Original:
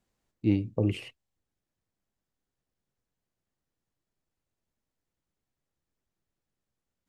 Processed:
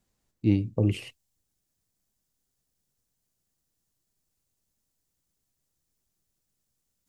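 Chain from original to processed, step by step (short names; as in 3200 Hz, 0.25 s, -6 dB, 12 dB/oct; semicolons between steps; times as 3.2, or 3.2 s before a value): tone controls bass +4 dB, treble +6 dB, from 1.07 s treble +14 dB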